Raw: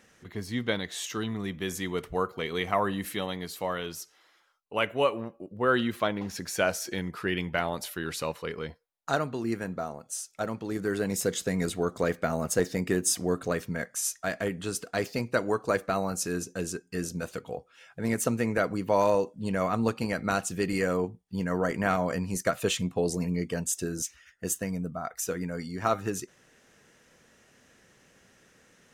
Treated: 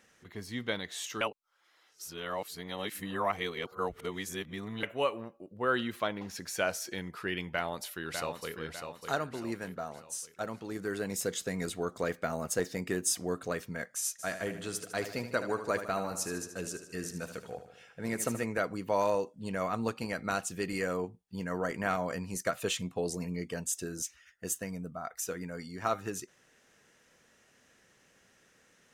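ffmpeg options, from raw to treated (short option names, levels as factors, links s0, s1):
-filter_complex "[0:a]asplit=2[s0][s1];[s1]afade=t=in:st=7.51:d=0.01,afade=t=out:st=8.54:d=0.01,aecho=0:1:600|1200|1800|2400|3000:0.473151|0.212918|0.0958131|0.0431159|0.0194022[s2];[s0][s2]amix=inputs=2:normalize=0,asplit=3[s3][s4][s5];[s3]afade=t=out:st=14.18:d=0.02[s6];[s4]aecho=1:1:76|152|228|304|380|456|532:0.299|0.17|0.097|0.0553|0.0315|0.018|0.0102,afade=t=in:st=14.18:d=0.02,afade=t=out:st=18.43:d=0.02[s7];[s5]afade=t=in:st=18.43:d=0.02[s8];[s6][s7][s8]amix=inputs=3:normalize=0,asplit=3[s9][s10][s11];[s9]atrim=end=1.212[s12];[s10]atrim=start=1.208:end=4.832,asetpts=PTS-STARTPTS,areverse[s13];[s11]atrim=start=4.828[s14];[s12][s13]acrossfade=d=0.004:c1=hsin:c2=hsin[s15];[s15][s14]acrossfade=d=0.004:c1=hsin:c2=hsin,lowshelf=f=440:g=-4.5,volume=0.668"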